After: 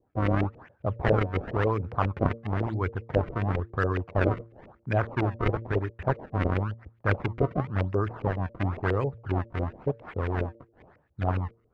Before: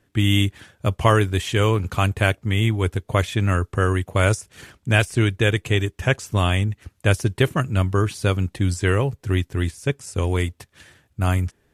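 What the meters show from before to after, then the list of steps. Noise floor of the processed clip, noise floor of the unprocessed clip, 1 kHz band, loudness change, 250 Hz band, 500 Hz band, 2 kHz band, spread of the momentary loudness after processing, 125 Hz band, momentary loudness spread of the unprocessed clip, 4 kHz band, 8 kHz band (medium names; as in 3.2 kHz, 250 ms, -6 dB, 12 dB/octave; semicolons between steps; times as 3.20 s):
-66 dBFS, -66 dBFS, -4.5 dB, -7.5 dB, -6.5 dB, -5.0 dB, -10.0 dB, 6 LU, -8.0 dB, 6 LU, -20.5 dB, under -30 dB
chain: decimation with a swept rate 30×, swing 160% 0.97 Hz; de-hum 114.4 Hz, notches 5; LFO low-pass saw up 7.3 Hz 450–2500 Hz; trim -8 dB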